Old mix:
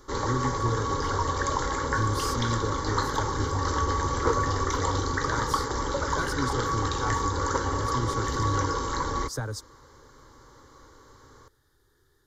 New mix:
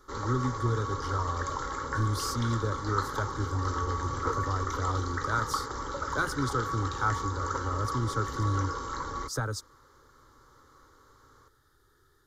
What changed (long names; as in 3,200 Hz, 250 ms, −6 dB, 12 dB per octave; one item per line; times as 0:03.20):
background −8.5 dB
master: add parametric band 1,300 Hz +11.5 dB 0.23 octaves